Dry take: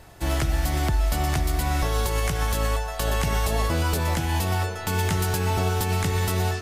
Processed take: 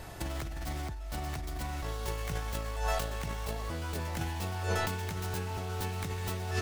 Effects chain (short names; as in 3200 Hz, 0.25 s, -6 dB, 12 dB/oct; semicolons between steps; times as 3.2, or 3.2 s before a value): self-modulated delay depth 0.14 ms; negative-ratio compressor -31 dBFS, ratio -1; gain -4 dB